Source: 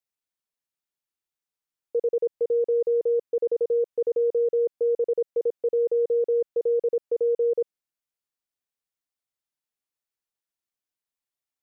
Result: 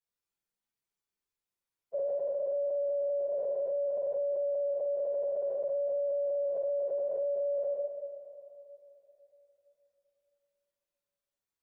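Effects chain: inharmonic rescaling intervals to 130%; two-slope reverb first 0.88 s, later 3.3 s, from -19 dB, DRR -5.5 dB; limiter -28.5 dBFS, peak gain reduction 18 dB; gain +1 dB

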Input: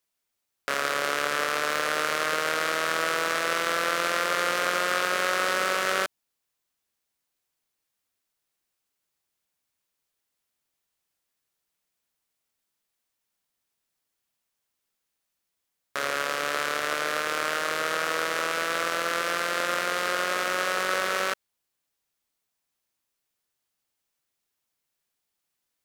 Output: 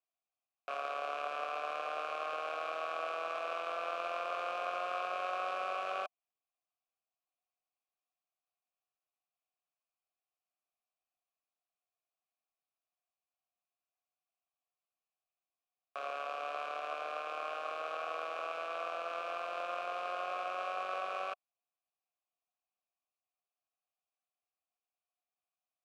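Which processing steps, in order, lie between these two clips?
vowel filter a

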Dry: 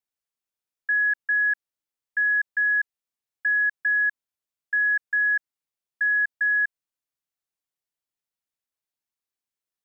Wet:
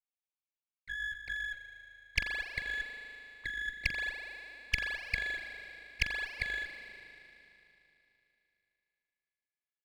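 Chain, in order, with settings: sine-wave speech; EQ curve 1000 Hz 0 dB, 1600 Hz -18 dB, 2200 Hz +15 dB; spring tank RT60 3.1 s, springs 34 ms, chirp 40 ms, DRR 5.5 dB; running maximum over 5 samples; gain -4 dB

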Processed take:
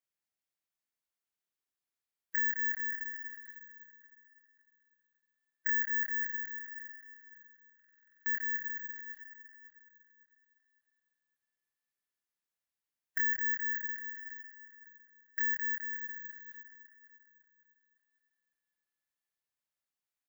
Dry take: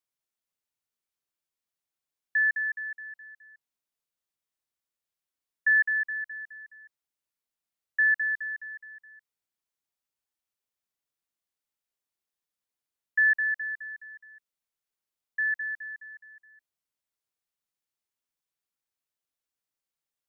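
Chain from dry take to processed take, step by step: spectral limiter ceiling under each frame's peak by 24 dB; bell 1800 Hz +5 dB 0.94 oct; compressor 6:1, threshold -26 dBFS, peak gain reduction 10 dB; doubler 26 ms -2.5 dB; tape echo 0.555 s, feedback 46%, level -9 dB, low-pass 1600 Hz; careless resampling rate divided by 2×, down none, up zero stuff; stuck buffer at 7.75, samples 2048, times 10; gain -9 dB

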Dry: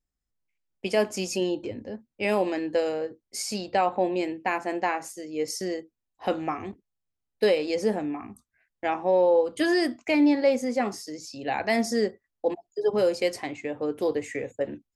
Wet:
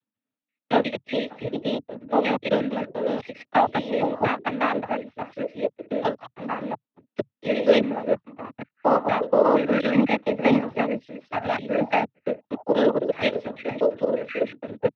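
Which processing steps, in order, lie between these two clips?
slices in reverse order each 0.118 s, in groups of 3; monotone LPC vocoder at 8 kHz 230 Hz; noise vocoder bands 12; gain +5 dB

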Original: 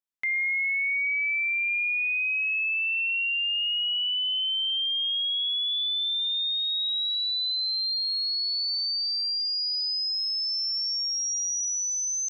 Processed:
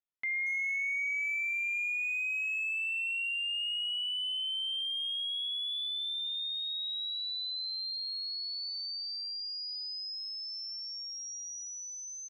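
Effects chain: air absorption 150 m; notch 1600 Hz, Q 9.6; speakerphone echo 0.23 s, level -11 dB; gain -4.5 dB

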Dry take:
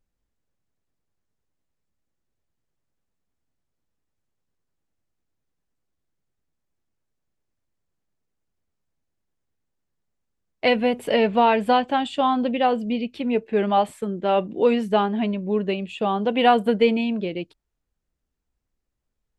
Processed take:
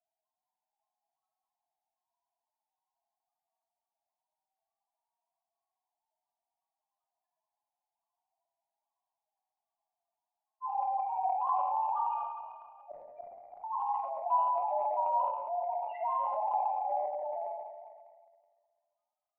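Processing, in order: cycle switcher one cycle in 3, inverted; limiter -15 dBFS, peak gain reduction 9.5 dB; mistuned SSB +210 Hz 470–2200 Hz; short-mantissa float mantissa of 2-bit; loudest bins only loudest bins 1; 12.06–13.64 flipped gate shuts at -40 dBFS, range -31 dB; air absorption 480 m; shoebox room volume 1800 m³, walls mixed, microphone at 2.9 m; transient shaper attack 0 dB, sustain +8 dB; mismatched tape noise reduction encoder only; gain +3 dB

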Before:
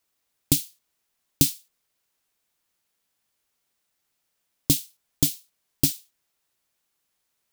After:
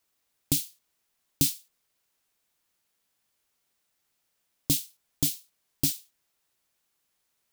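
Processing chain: limiter -9.5 dBFS, peak gain reduction 6.5 dB

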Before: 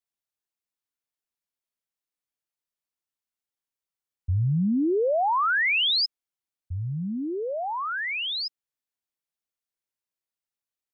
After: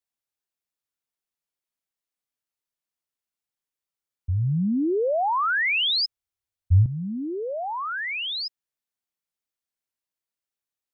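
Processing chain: 5.29–6.86 resonant low shelf 130 Hz +9 dB, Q 3

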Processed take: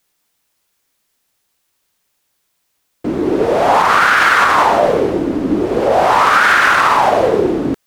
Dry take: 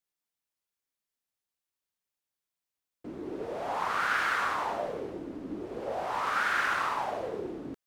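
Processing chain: maximiser +23.5 dB; gain -1 dB

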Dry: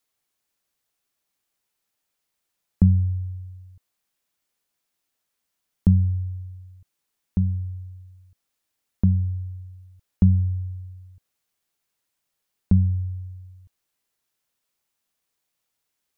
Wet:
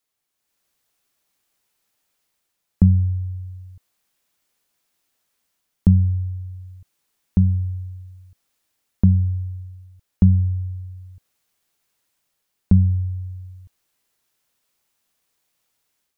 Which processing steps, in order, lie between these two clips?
AGC gain up to 8 dB; gain -1.5 dB

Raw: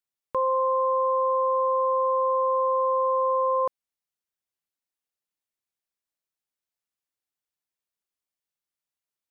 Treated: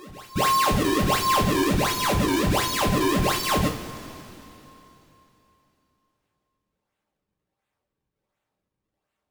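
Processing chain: inverse Chebyshev band-stop 250–630 Hz, stop band 40 dB; bell 270 Hz -8 dB 2.9 oct; decimation with a swept rate 37×, swing 160% 1.4 Hz; vibrato 0.33 Hz 45 cents; reverse echo 0.933 s -20.5 dB; two-slope reverb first 0.29 s, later 3.3 s, from -18 dB, DRR -2 dB; gain +5 dB

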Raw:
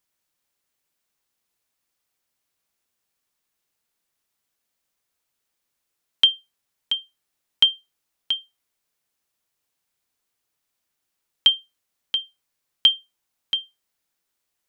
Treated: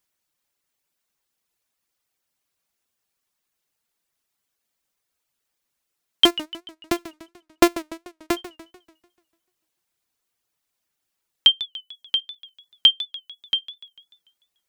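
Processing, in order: 6.25–8.37 sample sorter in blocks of 128 samples; reverb removal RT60 0.71 s; warbling echo 0.147 s, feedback 50%, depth 186 cents, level -15.5 dB; gain +1.5 dB

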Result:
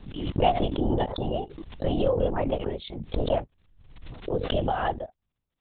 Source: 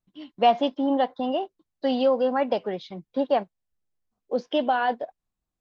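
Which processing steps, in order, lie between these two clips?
crackle 16/s -55 dBFS; bell 1500 Hz -6.5 dB 2.9 oct; LPC vocoder at 8 kHz whisper; backwards sustainer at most 53 dB/s

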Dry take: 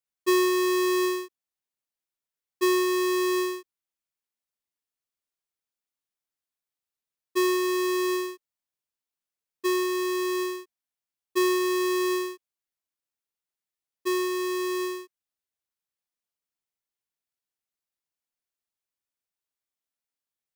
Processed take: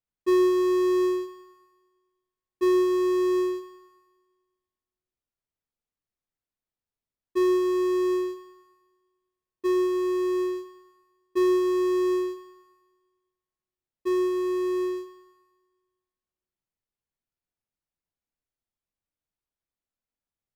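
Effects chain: tilt -3 dB/oct; in parallel at -7 dB: overloaded stage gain 28.5 dB; on the sum: Schroeder reverb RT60 1.4 s, DRR 9 dB; gain -4.5 dB

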